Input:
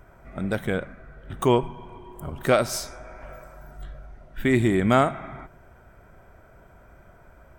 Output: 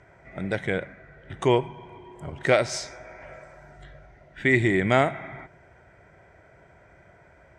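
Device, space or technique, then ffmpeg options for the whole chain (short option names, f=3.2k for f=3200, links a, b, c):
car door speaker: -af "highpass=88,equalizer=f=230:t=q:w=4:g=-8,equalizer=f=1.2k:t=q:w=4:g=-8,equalizer=f=2k:t=q:w=4:g=9,lowpass=f=7.5k:w=0.5412,lowpass=f=7.5k:w=1.3066"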